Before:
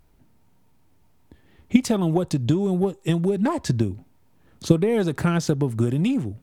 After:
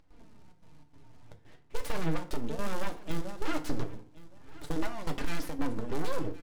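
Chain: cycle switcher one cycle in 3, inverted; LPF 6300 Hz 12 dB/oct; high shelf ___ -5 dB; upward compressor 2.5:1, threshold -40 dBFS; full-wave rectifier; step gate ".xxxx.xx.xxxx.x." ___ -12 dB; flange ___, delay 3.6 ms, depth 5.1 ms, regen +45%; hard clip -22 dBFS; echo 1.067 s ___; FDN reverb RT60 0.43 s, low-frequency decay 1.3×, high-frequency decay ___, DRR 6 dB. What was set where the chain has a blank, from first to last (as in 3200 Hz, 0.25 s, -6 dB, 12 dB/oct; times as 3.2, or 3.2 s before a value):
4300 Hz, 145 bpm, 0.36 Hz, -19.5 dB, 0.75×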